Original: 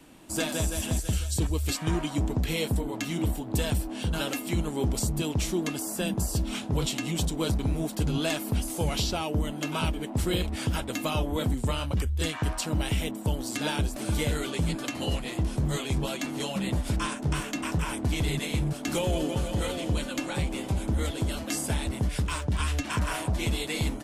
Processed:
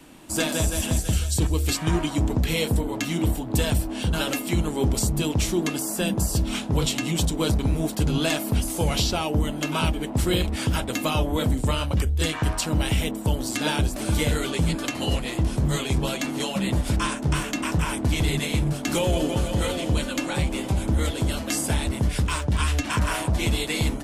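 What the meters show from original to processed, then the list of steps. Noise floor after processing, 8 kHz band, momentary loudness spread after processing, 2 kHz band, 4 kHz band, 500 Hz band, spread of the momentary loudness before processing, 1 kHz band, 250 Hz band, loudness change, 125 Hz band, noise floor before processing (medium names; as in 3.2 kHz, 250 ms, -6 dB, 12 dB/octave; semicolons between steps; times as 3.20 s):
-32 dBFS, +5.0 dB, 3 LU, +5.0 dB, +5.0 dB, +4.5 dB, 3 LU, +5.0 dB, +4.5 dB, +4.5 dB, +4.5 dB, -37 dBFS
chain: de-hum 46.93 Hz, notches 17; trim +5 dB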